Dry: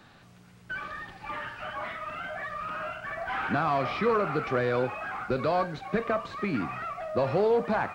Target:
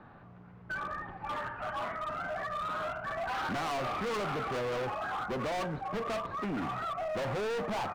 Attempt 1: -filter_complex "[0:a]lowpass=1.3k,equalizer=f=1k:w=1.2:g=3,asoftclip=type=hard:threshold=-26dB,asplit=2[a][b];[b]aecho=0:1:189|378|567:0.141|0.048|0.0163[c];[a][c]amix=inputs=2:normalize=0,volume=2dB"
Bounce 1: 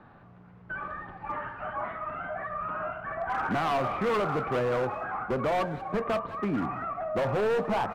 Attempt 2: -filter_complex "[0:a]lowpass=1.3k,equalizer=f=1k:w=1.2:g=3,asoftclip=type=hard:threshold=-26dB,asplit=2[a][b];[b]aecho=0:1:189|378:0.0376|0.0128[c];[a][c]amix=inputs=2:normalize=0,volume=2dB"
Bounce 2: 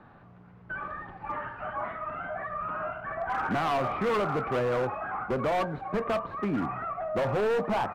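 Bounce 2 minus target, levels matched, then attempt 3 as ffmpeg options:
hard clip: distortion -5 dB
-filter_complex "[0:a]lowpass=1.3k,equalizer=f=1k:w=1.2:g=3,asoftclip=type=hard:threshold=-34dB,asplit=2[a][b];[b]aecho=0:1:189|378:0.0376|0.0128[c];[a][c]amix=inputs=2:normalize=0,volume=2dB"

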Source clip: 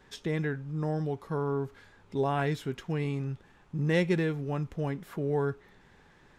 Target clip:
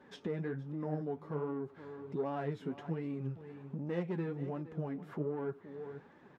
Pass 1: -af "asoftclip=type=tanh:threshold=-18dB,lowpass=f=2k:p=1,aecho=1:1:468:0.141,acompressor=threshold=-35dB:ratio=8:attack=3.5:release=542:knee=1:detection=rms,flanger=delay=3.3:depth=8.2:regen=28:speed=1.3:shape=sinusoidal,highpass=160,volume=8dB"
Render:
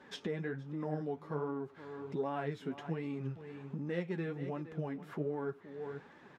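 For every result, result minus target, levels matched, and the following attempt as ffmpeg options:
soft clip: distortion -9 dB; 2000 Hz band +4.5 dB
-af "asoftclip=type=tanh:threshold=-25.5dB,lowpass=f=2k:p=1,aecho=1:1:468:0.141,acompressor=threshold=-35dB:ratio=8:attack=3.5:release=542:knee=1:detection=rms,flanger=delay=3.3:depth=8.2:regen=28:speed=1.3:shape=sinusoidal,highpass=160,volume=8dB"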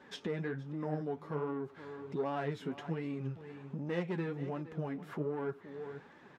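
2000 Hz band +4.5 dB
-af "asoftclip=type=tanh:threshold=-25.5dB,lowpass=f=770:p=1,aecho=1:1:468:0.141,acompressor=threshold=-35dB:ratio=8:attack=3.5:release=542:knee=1:detection=rms,flanger=delay=3.3:depth=8.2:regen=28:speed=1.3:shape=sinusoidal,highpass=160,volume=8dB"

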